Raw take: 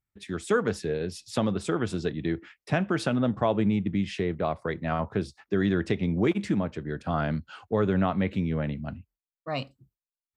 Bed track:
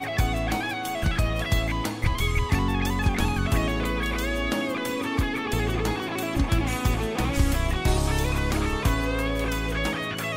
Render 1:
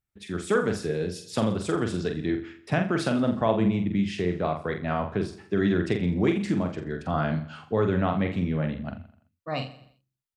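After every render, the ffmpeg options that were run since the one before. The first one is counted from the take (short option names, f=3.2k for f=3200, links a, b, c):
-filter_complex "[0:a]asplit=2[a][b];[b]adelay=45,volume=-6dB[c];[a][c]amix=inputs=2:normalize=0,aecho=1:1:84|168|252|336:0.178|0.0818|0.0376|0.0173"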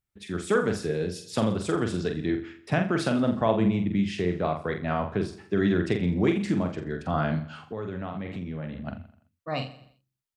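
-filter_complex "[0:a]asettb=1/sr,asplit=3[a][b][c];[a]atrim=end=7.604[d];[b]atrim=start=7.6:end=8.87,asetpts=PTS-STARTPTS,afade=t=in:d=0.004:c=qsin,afade=t=out:st=1.266:d=0.004:c=qsin,acompressor=threshold=-33dB:ratio=3:attack=3.2:release=140:knee=1:detection=peak[e];[c]atrim=start=8.866[f];[d][e]acrossfade=d=0.004:c1=hsin:c2=qsin[g];[g][f]acrossfade=d=0.004:c1=qsin:c2=hsin"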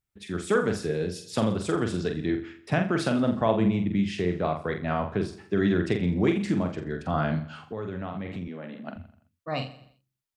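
-filter_complex "[0:a]asettb=1/sr,asplit=3[a][b][c];[a]atrim=end=8.484[d];[b]atrim=start=8.48:end=8.96,asetpts=PTS-STARTPTS,afade=t=in:d=0.004:c=qsin,afade=t=out:st=0.476:d=0.004:c=qsin,highpass=f=210:w=0.5412,highpass=f=210:w=1.3066[e];[c]atrim=start=8.956[f];[d][e]acrossfade=d=0.004:c1=hsin:c2=qsin[g];[g][f]acrossfade=d=0.004:c1=qsin:c2=hsin"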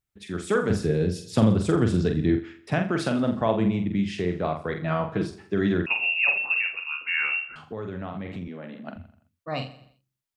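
-filter_complex "[0:a]asettb=1/sr,asplit=3[a][b][c];[a]atrim=end=0.704[d];[b]atrim=start=0.7:end=2.39,asetpts=PTS-STARTPTS,afade=t=in:d=0.004:c=qsin,afade=t=out:st=1.686:d=0.004:c=qsin,lowshelf=f=280:g=10.5[e];[c]atrim=start=2.386[f];[d][e]acrossfade=d=0.004:c1=hsin:c2=qsin[g];[g][f]acrossfade=d=0.004:c1=qsin:c2=hsin,asettb=1/sr,asplit=3[h][i][j];[h]atrim=end=4.764[k];[i]atrim=start=4.76:end=5.3,asetpts=PTS-STARTPTS,afade=t=in:d=0.004:c=qsin,afade=t=out:st=0.536:d=0.004:c=qsin,aecho=1:1:6.3:0.65,atrim=end_sample=23814[l];[j]atrim=start=5.296[m];[k][l]acrossfade=d=0.004:c1=hsin:c2=qsin[n];[n][m]acrossfade=d=0.004:c1=qsin:c2=hsin,asettb=1/sr,asplit=3[o][p][q];[o]atrim=end=5.864[r];[p]atrim=start=5.86:end=7.56,asetpts=PTS-STARTPTS,afade=t=in:d=0.004:c=qsin,afade=t=out:st=1.696:d=0.004:c=qsin,lowpass=f=2.5k:t=q:w=0.5098,lowpass=f=2.5k:t=q:w=0.6013,lowpass=f=2.5k:t=q:w=0.9,lowpass=f=2.5k:t=q:w=2.563,afreqshift=-2900[s];[q]atrim=start=7.556[t];[r][s]acrossfade=d=0.004:c1=hsin:c2=qsin[u];[u][t]acrossfade=d=0.004:c1=qsin:c2=hsin"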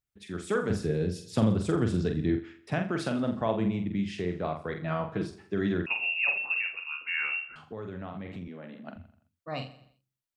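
-af "volume=-5dB"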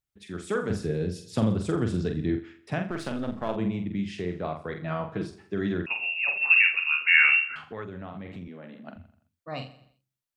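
-filter_complex "[0:a]asettb=1/sr,asplit=3[a][b][c];[a]atrim=end=2.904[d];[b]atrim=start=2.9:end=3.56,asetpts=PTS-STARTPTS,afade=t=in:d=0.004:c=qsin,afade=t=out:st=0.656:d=0.004:c=qsin,aeval=exprs='if(lt(val(0),0),0.447*val(0),val(0))':c=same[e];[c]atrim=start=3.556[f];[d][e]acrossfade=d=0.004:c1=hsin:c2=qsin[g];[g][f]acrossfade=d=0.004:c1=qsin:c2=hsin,asplit=3[h][i][j];[h]afade=t=out:st=6.41:d=0.02[k];[i]equalizer=f=2k:w=0.89:g=15,afade=t=in:st=6.41:d=0.02,afade=t=out:st=7.83:d=0.02[l];[j]afade=t=in:st=7.83:d=0.02[m];[k][l][m]amix=inputs=3:normalize=0"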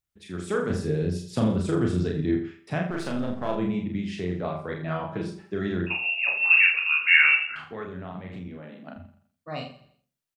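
-filter_complex "[0:a]asplit=2[a][b];[b]adelay=33,volume=-4dB[c];[a][c]amix=inputs=2:normalize=0,asplit=2[d][e];[e]adelay=89,lowpass=f=1.2k:p=1,volume=-9.5dB,asplit=2[f][g];[g]adelay=89,lowpass=f=1.2k:p=1,volume=0.17[h];[d][f][h]amix=inputs=3:normalize=0"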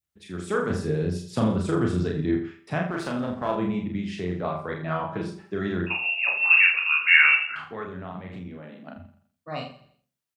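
-af "highpass=48,adynamicequalizer=threshold=0.00891:dfrequency=1100:dqfactor=1.3:tfrequency=1100:tqfactor=1.3:attack=5:release=100:ratio=0.375:range=2.5:mode=boostabove:tftype=bell"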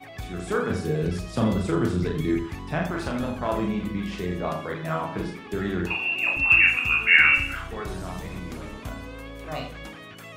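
-filter_complex "[1:a]volume=-13dB[a];[0:a][a]amix=inputs=2:normalize=0"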